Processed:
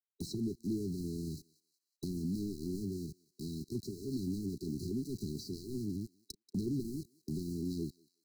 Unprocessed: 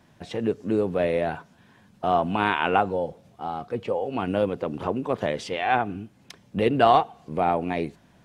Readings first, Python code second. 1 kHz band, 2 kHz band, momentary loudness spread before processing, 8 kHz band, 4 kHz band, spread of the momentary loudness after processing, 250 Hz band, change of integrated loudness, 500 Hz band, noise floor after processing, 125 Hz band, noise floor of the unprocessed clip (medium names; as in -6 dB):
under -40 dB, under -40 dB, 13 LU, no reading, -14.0 dB, 7 LU, -7.0 dB, -14.5 dB, -20.5 dB, under -85 dBFS, -5.5 dB, -58 dBFS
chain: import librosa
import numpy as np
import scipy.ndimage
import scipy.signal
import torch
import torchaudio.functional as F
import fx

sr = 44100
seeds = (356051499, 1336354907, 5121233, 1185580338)

y = fx.self_delay(x, sr, depth_ms=0.25)
y = scipy.signal.lfilter([1.0, -0.9], [1.0], y)
y = fx.env_lowpass_down(y, sr, base_hz=580.0, full_db=-33.5)
y = fx.low_shelf(y, sr, hz=270.0, db=7.5)
y = fx.leveller(y, sr, passes=2)
y = np.where(np.abs(y) >= 10.0 ** (-47.0 / 20.0), y, 0.0)
y = fx.brickwall_bandstop(y, sr, low_hz=410.0, high_hz=3900.0)
y = fx.echo_thinned(y, sr, ms=184, feedback_pct=28, hz=1100.0, wet_db=-21.5)
y = fx.band_squash(y, sr, depth_pct=70)
y = F.gain(torch.from_numpy(y), 2.5).numpy()